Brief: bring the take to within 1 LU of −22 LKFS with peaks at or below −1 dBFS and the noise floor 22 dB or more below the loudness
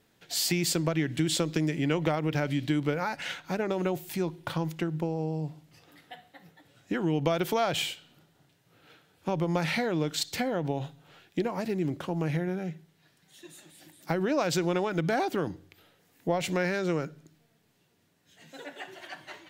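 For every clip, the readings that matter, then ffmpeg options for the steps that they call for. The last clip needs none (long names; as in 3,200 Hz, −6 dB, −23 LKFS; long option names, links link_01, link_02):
integrated loudness −30.0 LKFS; sample peak −11.0 dBFS; target loudness −22.0 LKFS
→ -af "volume=8dB"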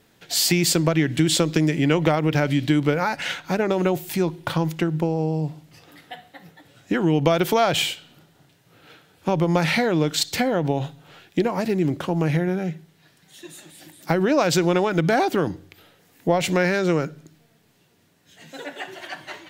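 integrated loudness −22.0 LKFS; sample peak −3.0 dBFS; background noise floor −60 dBFS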